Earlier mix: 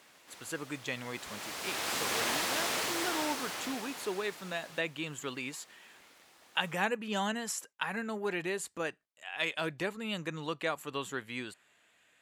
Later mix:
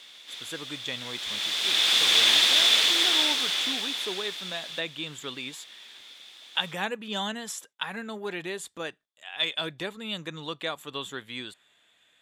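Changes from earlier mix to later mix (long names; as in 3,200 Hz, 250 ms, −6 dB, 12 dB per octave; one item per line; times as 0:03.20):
background: add meter weighting curve D
master: add parametric band 3,500 Hz +14 dB 0.21 octaves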